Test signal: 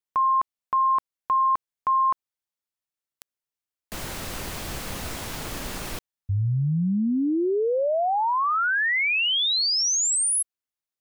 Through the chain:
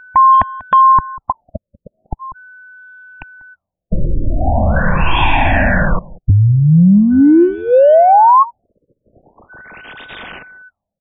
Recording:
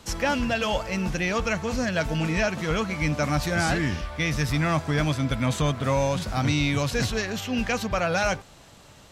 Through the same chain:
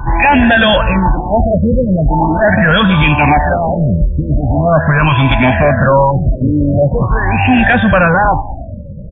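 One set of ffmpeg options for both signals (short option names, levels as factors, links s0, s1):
-filter_complex "[0:a]afftfilt=real='re*pow(10,16/40*sin(2*PI*(0.67*log(max(b,1)*sr/1024/100)/log(2)-(-0.97)*(pts-256)/sr)))':imag='im*pow(10,16/40*sin(2*PI*(0.67*log(max(b,1)*sr/1024/100)/log(2)-(-0.97)*(pts-256)/sr)))':win_size=1024:overlap=0.75,lowshelf=f=90:g=11,aecho=1:1:1.2:0.86,acrossover=split=300[s0][s1];[s0]acompressor=threshold=0.0398:ratio=8:attack=40:release=197:knee=6:detection=peak[s2];[s2][s1]amix=inputs=2:normalize=0,apsyclip=11.9,aeval=exprs='val(0)+0.0251*sin(2*PI*1500*n/s)':c=same,adynamicsmooth=sensitivity=7.5:basefreq=610,asplit=2[s3][s4];[s4]aecho=0:1:192:0.1[s5];[s3][s5]amix=inputs=2:normalize=0,aresample=32000,aresample=44100,afftfilt=real='re*lt(b*sr/1024,590*pow(3800/590,0.5+0.5*sin(2*PI*0.42*pts/sr)))':imag='im*lt(b*sr/1024,590*pow(3800/590,0.5+0.5*sin(2*PI*0.42*pts/sr)))':win_size=1024:overlap=0.75,volume=0.631"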